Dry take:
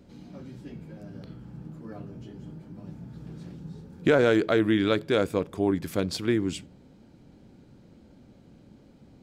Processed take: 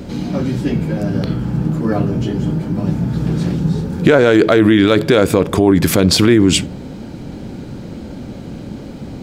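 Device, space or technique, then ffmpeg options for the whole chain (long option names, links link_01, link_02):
loud club master: -af "acompressor=threshold=-26dB:ratio=2,asoftclip=type=hard:threshold=-16.5dB,alimiter=level_in=25dB:limit=-1dB:release=50:level=0:latency=1,volume=-1dB"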